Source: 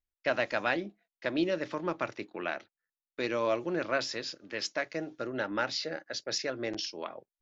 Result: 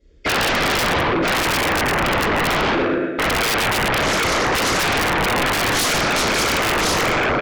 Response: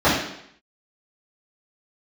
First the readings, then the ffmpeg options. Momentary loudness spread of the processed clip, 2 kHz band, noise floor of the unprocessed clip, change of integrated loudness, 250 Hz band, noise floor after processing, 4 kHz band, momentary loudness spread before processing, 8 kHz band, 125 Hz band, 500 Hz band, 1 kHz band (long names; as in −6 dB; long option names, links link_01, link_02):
1 LU, +17.5 dB, below −85 dBFS, +15.5 dB, +13.0 dB, −24 dBFS, +17.5 dB, 8 LU, can't be measured, +20.5 dB, +11.5 dB, +19.0 dB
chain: -filter_complex "[0:a]firequalizer=gain_entry='entry(110,0);entry(500,12);entry(730,-18);entry(1400,-4);entry(3400,-3);entry(6100,-20)':delay=0.05:min_phase=1,acompressor=threshold=-39dB:ratio=16,asplit=2[link_01][link_02];[link_02]adelay=116,lowpass=frequency=4400:poles=1,volume=-7dB,asplit=2[link_03][link_04];[link_04]adelay=116,lowpass=frequency=4400:poles=1,volume=0.48,asplit=2[link_05][link_06];[link_06]adelay=116,lowpass=frequency=4400:poles=1,volume=0.48,asplit=2[link_07][link_08];[link_08]adelay=116,lowpass=frequency=4400:poles=1,volume=0.48,asplit=2[link_09][link_10];[link_10]adelay=116,lowpass=frequency=4400:poles=1,volume=0.48,asplit=2[link_11][link_12];[link_12]adelay=116,lowpass=frequency=4400:poles=1,volume=0.48[link_13];[link_01][link_03][link_05][link_07][link_09][link_11][link_13]amix=inputs=7:normalize=0,aresample=16000,aresample=44100,bandreject=frequency=50:width_type=h:width=6,bandreject=frequency=100:width_type=h:width=6,bandreject=frequency=150:width_type=h:width=6,bandreject=frequency=200:width_type=h:width=6,bandreject=frequency=250:width_type=h:width=6,bandreject=frequency=300:width_type=h:width=6,bandreject=frequency=350:width_type=h:width=6,bandreject=frequency=400:width_type=h:width=6,bandreject=frequency=450:width_type=h:width=6[link_14];[1:a]atrim=start_sample=2205,afade=type=out:start_time=0.37:duration=0.01,atrim=end_sample=16758,asetrate=22491,aresample=44100[link_15];[link_14][link_15]afir=irnorm=-1:irlink=0,volume=7.5dB,asoftclip=hard,volume=-7.5dB,alimiter=limit=-12dB:level=0:latency=1:release=13,aexciter=amount=11.5:drive=3.3:freq=4200,aeval=exprs='0.447*sin(PI/2*7.08*val(0)/0.447)':channel_layout=same,volume=-8.5dB"